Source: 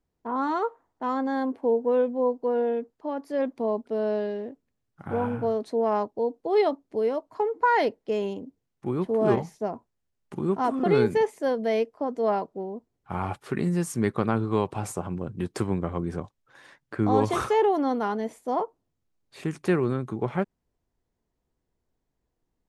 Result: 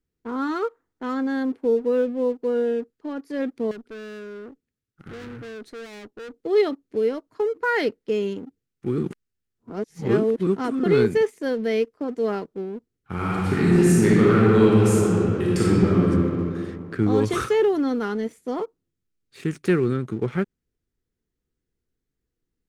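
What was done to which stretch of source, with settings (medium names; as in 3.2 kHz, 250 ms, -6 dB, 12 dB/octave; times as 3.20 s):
3.71–6.34 s: valve stage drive 37 dB, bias 0.4
8.98–10.47 s: reverse
13.15–16.08 s: reverb throw, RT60 2.5 s, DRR -7 dB
whole clip: high-order bell 780 Hz -11.5 dB 1.1 oct; waveshaping leveller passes 1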